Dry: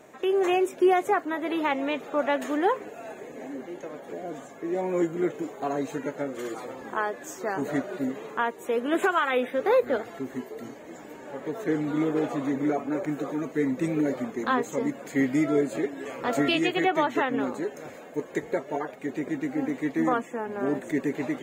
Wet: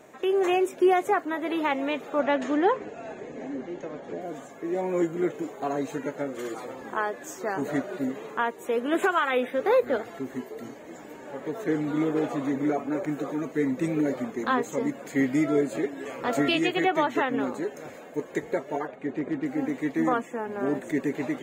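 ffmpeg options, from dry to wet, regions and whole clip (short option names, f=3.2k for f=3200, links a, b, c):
-filter_complex "[0:a]asettb=1/sr,asplit=3[a][b][c];[a]atrim=end=2.194[d];[b]atrim=start=2.19:end=4.21,asetpts=PTS-STARTPTS,afade=t=in:d=0.004:c=qsin,afade=t=out:st=2.016:d=0.004:c=qsin,lowpass=f=6.8k:w=0.5412,lowpass=f=6.8k:w=1.3066,lowshelf=f=230:g=7.5[e];[c]atrim=start=4.206[f];[d][e]acrossfade=d=0.004:c1=hsin:c2=qsin[g];[g][f]acrossfade=d=0.004:c1=qsin:c2=hsin,asettb=1/sr,asplit=3[h][i][j];[h]atrim=end=18.874[k];[i]atrim=start=18.87:end=19.46,asetpts=PTS-STARTPTS,afade=t=in:d=0.004:c=qsin,afade=t=out:st=0.586:d=0.004:c=qsin,aemphasis=mode=reproduction:type=75fm,bandreject=f=5.3k:w=5,asoftclip=type=hard:threshold=-21.5dB[l];[j]atrim=start=19.456[m];[k][l]acrossfade=d=0.004:c1=hsin:c2=qsin[n];[n][m]acrossfade=d=0.004:c1=qsin:c2=hsin"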